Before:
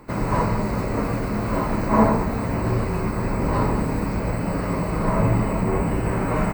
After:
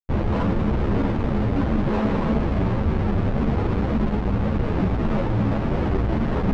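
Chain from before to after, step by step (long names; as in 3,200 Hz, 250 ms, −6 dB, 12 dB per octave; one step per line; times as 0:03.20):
on a send: echo with a time of its own for lows and highs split 560 Hz, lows 115 ms, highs 272 ms, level −7 dB
on the sum: comparator with hysteresis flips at −22.5 dBFS
head-to-tape spacing loss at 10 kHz 37 dB
string-ensemble chorus
level +4.5 dB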